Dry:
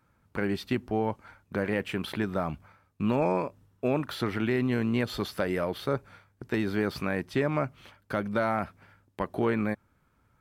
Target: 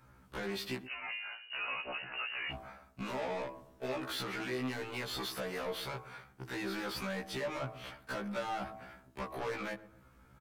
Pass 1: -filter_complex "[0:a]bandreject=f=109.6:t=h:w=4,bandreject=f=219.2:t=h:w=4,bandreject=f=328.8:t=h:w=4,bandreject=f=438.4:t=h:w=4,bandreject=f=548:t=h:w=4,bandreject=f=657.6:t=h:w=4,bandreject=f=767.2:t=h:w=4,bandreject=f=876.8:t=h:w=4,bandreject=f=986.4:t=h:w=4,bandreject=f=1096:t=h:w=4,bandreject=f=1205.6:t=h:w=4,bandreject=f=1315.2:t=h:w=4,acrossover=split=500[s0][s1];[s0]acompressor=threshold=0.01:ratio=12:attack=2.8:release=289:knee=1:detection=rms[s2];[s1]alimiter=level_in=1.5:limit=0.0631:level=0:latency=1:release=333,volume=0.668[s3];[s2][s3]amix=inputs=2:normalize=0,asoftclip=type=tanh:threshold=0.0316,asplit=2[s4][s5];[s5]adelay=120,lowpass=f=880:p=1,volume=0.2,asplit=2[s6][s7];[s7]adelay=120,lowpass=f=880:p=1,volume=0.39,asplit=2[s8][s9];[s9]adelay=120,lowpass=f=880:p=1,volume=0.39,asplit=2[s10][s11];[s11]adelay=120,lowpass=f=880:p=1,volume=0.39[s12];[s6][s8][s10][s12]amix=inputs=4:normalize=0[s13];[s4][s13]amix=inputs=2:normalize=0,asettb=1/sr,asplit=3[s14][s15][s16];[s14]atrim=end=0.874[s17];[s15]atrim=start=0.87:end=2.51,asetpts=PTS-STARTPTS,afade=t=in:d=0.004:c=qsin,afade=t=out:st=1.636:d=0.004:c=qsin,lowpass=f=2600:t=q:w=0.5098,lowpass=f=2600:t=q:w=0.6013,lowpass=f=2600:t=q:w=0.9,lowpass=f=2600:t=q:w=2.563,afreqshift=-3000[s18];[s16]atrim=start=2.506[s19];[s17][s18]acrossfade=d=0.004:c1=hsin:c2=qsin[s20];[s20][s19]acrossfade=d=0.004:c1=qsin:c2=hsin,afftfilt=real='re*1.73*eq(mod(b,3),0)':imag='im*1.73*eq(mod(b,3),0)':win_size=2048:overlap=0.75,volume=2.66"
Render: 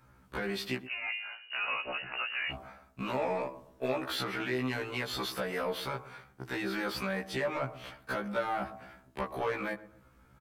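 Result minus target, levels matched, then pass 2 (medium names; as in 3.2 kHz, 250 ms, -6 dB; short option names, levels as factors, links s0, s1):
saturation: distortion -10 dB
-filter_complex "[0:a]bandreject=f=109.6:t=h:w=4,bandreject=f=219.2:t=h:w=4,bandreject=f=328.8:t=h:w=4,bandreject=f=438.4:t=h:w=4,bandreject=f=548:t=h:w=4,bandreject=f=657.6:t=h:w=4,bandreject=f=767.2:t=h:w=4,bandreject=f=876.8:t=h:w=4,bandreject=f=986.4:t=h:w=4,bandreject=f=1096:t=h:w=4,bandreject=f=1205.6:t=h:w=4,bandreject=f=1315.2:t=h:w=4,acrossover=split=500[s0][s1];[s0]acompressor=threshold=0.01:ratio=12:attack=2.8:release=289:knee=1:detection=rms[s2];[s1]alimiter=level_in=1.5:limit=0.0631:level=0:latency=1:release=333,volume=0.668[s3];[s2][s3]amix=inputs=2:normalize=0,asoftclip=type=tanh:threshold=0.00944,asplit=2[s4][s5];[s5]adelay=120,lowpass=f=880:p=1,volume=0.2,asplit=2[s6][s7];[s7]adelay=120,lowpass=f=880:p=1,volume=0.39,asplit=2[s8][s9];[s9]adelay=120,lowpass=f=880:p=1,volume=0.39,asplit=2[s10][s11];[s11]adelay=120,lowpass=f=880:p=1,volume=0.39[s12];[s6][s8][s10][s12]amix=inputs=4:normalize=0[s13];[s4][s13]amix=inputs=2:normalize=0,asettb=1/sr,asplit=3[s14][s15][s16];[s14]atrim=end=0.874[s17];[s15]atrim=start=0.87:end=2.51,asetpts=PTS-STARTPTS,afade=t=in:d=0.004:c=qsin,afade=t=out:st=1.636:d=0.004:c=qsin,lowpass=f=2600:t=q:w=0.5098,lowpass=f=2600:t=q:w=0.6013,lowpass=f=2600:t=q:w=0.9,lowpass=f=2600:t=q:w=2.563,afreqshift=-3000[s18];[s16]atrim=start=2.506[s19];[s17][s18]acrossfade=d=0.004:c1=hsin:c2=qsin[s20];[s20][s19]acrossfade=d=0.004:c1=qsin:c2=hsin,afftfilt=real='re*1.73*eq(mod(b,3),0)':imag='im*1.73*eq(mod(b,3),0)':win_size=2048:overlap=0.75,volume=2.66"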